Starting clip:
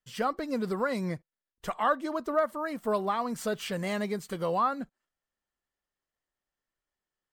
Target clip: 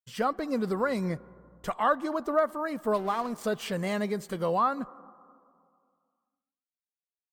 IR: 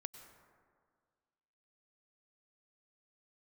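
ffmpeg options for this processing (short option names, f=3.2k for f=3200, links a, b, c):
-filter_complex "[0:a]agate=range=-33dB:threshold=-50dB:ratio=3:detection=peak,asettb=1/sr,asplit=3[a][b][c];[a]atrim=end=0.744[d];[b]atrim=start=0.74:end=1.73,asetpts=PTS-STARTPTS,afade=t=in:d=0.004:c=qsin,afade=t=out:st=0.986:d=0.004:c=qsin,aeval=exprs='val(0)+0.000891*(sin(2*PI*60*n/s)+sin(2*PI*2*60*n/s)/2+sin(2*PI*3*60*n/s)/3+sin(2*PI*4*60*n/s)/4+sin(2*PI*5*60*n/s)/5)':c=same[e];[c]atrim=start=1.726[f];[d][e]acrossfade=d=0.004:c1=hsin:c2=qsin[g];[g][f]acrossfade=d=0.004:c1=qsin:c2=hsin,asettb=1/sr,asplit=3[h][i][j];[h]atrim=end=2.944[k];[i]atrim=start=2.94:end=3.44,asetpts=PTS-STARTPTS,afade=t=in:d=0.004:c=qsin,afade=t=out:st=0.496:d=0.004:c=qsin,aeval=exprs='sgn(val(0))*max(abs(val(0))-0.00668,0)':c=same[l];[j]atrim=start=3.436[m];[k][l]acrossfade=d=0.004:c1=hsin:c2=qsin[n];[n][m]acrossfade=d=0.004:c1=qsin:c2=hsin,asplit=2[o][p];[1:a]atrim=start_sample=2205,asetrate=36162,aresample=44100,lowpass=2k[q];[p][q]afir=irnorm=-1:irlink=0,volume=-9dB[r];[o][r]amix=inputs=2:normalize=0"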